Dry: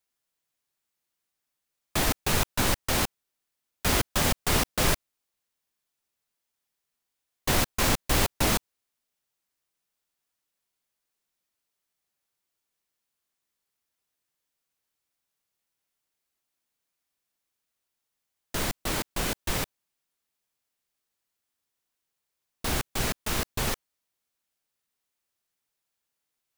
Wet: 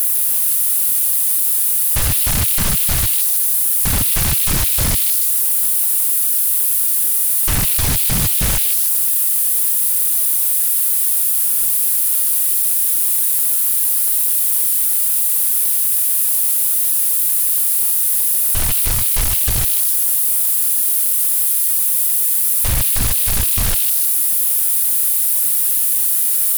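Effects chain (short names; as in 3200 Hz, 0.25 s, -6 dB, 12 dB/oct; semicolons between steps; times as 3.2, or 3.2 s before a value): switching spikes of -21 dBFS; elliptic band-stop 110–9800 Hz; high shelf 9400 Hz -8.5 dB; sine folder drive 16 dB, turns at -12 dBFS; on a send: delay with a stepping band-pass 0.154 s, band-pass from 3500 Hz, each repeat 0.7 oct, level -1 dB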